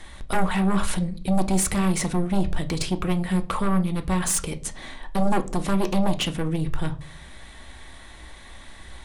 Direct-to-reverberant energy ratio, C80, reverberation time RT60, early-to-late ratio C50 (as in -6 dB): 7.0 dB, 22.0 dB, 0.45 s, 18.0 dB